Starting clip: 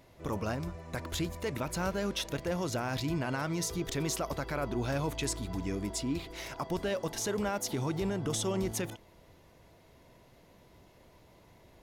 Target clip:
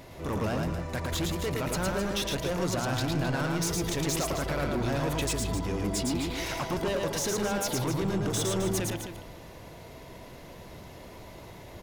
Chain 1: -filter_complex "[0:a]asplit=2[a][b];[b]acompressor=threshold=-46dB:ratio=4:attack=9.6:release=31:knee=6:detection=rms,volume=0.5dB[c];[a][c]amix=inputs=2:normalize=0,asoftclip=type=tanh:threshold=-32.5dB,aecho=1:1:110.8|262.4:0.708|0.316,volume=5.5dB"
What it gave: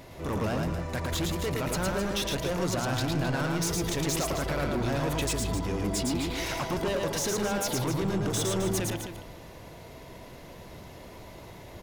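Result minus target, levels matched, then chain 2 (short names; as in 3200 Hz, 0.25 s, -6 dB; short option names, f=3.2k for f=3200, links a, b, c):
compressor: peak gain reduction -5.5 dB
-filter_complex "[0:a]asplit=2[a][b];[b]acompressor=threshold=-53dB:ratio=4:attack=9.6:release=31:knee=6:detection=rms,volume=0.5dB[c];[a][c]amix=inputs=2:normalize=0,asoftclip=type=tanh:threshold=-32.5dB,aecho=1:1:110.8|262.4:0.708|0.316,volume=5.5dB"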